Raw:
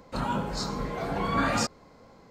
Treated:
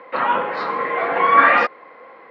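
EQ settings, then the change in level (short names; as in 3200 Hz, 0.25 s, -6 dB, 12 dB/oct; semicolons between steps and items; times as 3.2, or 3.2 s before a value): speaker cabinet 300–3000 Hz, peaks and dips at 330 Hz +6 dB, 500 Hz +10 dB, 730 Hz +4 dB, 1100 Hz +8 dB, 1900 Hz +8 dB; bell 2200 Hz +13 dB 2.7 oct; 0.0 dB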